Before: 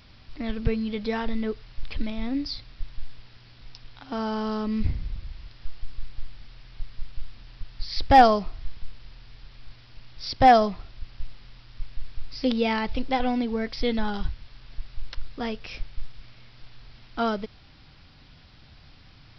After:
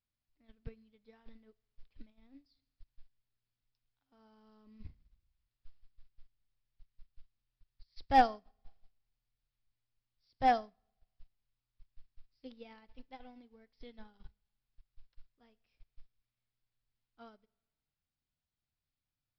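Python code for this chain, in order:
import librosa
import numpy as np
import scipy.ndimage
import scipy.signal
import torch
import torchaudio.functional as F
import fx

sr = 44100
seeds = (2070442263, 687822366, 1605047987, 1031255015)

y = fx.rev_schroeder(x, sr, rt60_s=1.2, comb_ms=26, drr_db=16.0)
y = fx.upward_expand(y, sr, threshold_db=-32.0, expansion=2.5)
y = y * 10.0 ** (-9.0 / 20.0)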